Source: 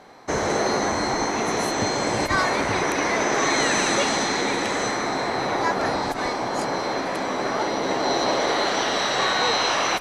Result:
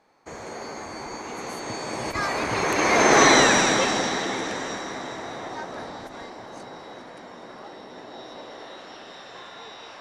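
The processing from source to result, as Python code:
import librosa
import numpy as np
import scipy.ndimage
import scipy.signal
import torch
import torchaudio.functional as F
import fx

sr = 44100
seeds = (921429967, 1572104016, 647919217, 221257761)

y = fx.doppler_pass(x, sr, speed_mps=23, closest_m=6.1, pass_at_s=3.21)
y = fx.echo_alternate(y, sr, ms=205, hz=1600.0, feedback_pct=75, wet_db=-12)
y = y * 10.0 ** (6.5 / 20.0)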